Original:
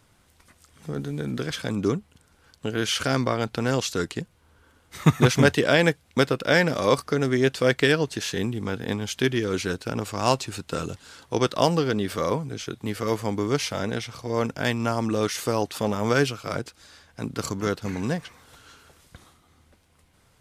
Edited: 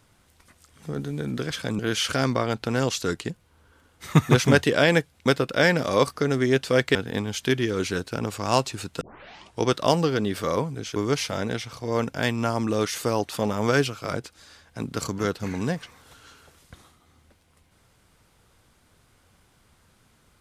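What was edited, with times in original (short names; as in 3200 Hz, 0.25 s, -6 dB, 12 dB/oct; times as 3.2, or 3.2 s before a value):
1.79–2.7 cut
7.86–8.69 cut
10.75 tape start 0.61 s
12.7–13.38 cut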